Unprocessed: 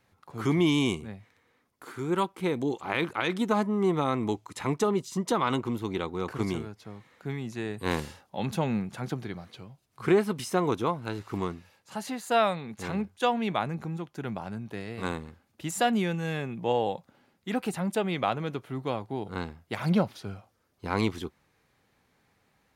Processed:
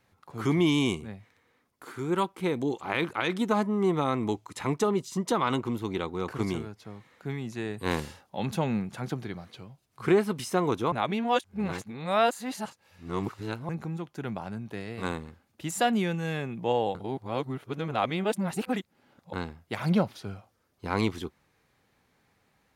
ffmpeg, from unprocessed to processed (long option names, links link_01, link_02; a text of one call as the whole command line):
ffmpeg -i in.wav -filter_complex "[0:a]asplit=5[link_01][link_02][link_03][link_04][link_05];[link_01]atrim=end=10.922[link_06];[link_02]atrim=start=10.918:end=13.692,asetpts=PTS-STARTPTS,areverse[link_07];[link_03]atrim=start=13.688:end=16.952[link_08];[link_04]atrim=start=16.948:end=19.332,asetpts=PTS-STARTPTS,areverse[link_09];[link_05]atrim=start=19.328[link_10];[link_06][link_07]acrossfade=duration=0.004:curve1=hsin:curve2=hsin[link_11];[link_11][link_08]acrossfade=duration=0.004:curve1=hsin:curve2=hsin[link_12];[link_12][link_09]acrossfade=duration=0.004:curve1=hsin:curve2=hsin[link_13];[link_13][link_10]acrossfade=duration=0.004:curve1=hsin:curve2=hsin" out.wav